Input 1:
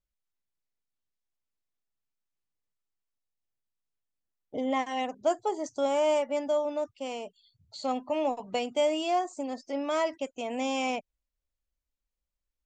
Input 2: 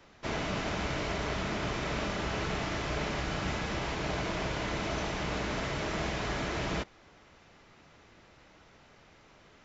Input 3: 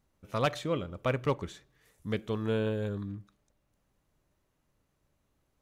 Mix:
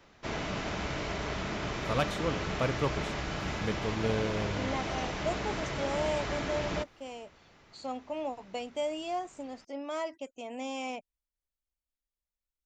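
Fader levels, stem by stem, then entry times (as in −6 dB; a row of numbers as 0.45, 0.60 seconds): −7.0, −1.5, −1.5 decibels; 0.00, 0.00, 1.55 seconds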